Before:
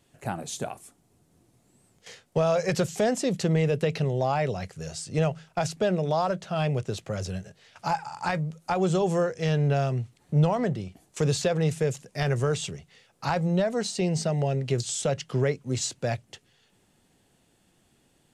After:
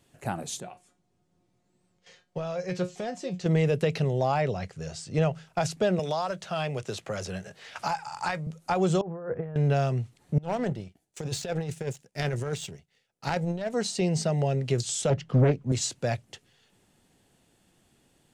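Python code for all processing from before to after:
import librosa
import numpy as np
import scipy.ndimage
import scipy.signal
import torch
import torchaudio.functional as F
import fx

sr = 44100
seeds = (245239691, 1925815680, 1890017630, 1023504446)

y = fx.chain(x, sr, fx.lowpass(hz=6000.0, slope=12),
    fx.comb_fb(f0_hz=180.0, decay_s=0.19, harmonics='all', damping=0.0, mix_pct=80), at=(0.6, 3.46))
y = fx.chain(y, sr, fx.lowpass(hz=9100.0, slope=12),
    fx.high_shelf(hz=5500.0, db=-5.5), at=(4.41, 5.34))
y = fx.chain(y, sr, fx.low_shelf(hz=470.0, db=-8.5),
    fx.band_squash(depth_pct=70), at=(5.99, 8.47))
y = fx.chain(y, sr, fx.block_float(bits=7),
    fx.lowpass(hz=1500.0, slope=24),
    fx.over_compress(threshold_db=-35.0, ratio=-1.0), at=(9.01, 9.56))
y = fx.chain(y, sr, fx.power_curve(exponent=1.4),
    fx.peak_eq(hz=1100.0, db=-9.0, octaves=0.25),
    fx.over_compress(threshold_db=-29.0, ratio=-0.5), at=(10.38, 13.74))
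y = fx.chain(y, sr, fx.lowpass(hz=2000.0, slope=6),
    fx.low_shelf(hz=280.0, db=7.5),
    fx.doppler_dist(depth_ms=0.61), at=(15.1, 15.72))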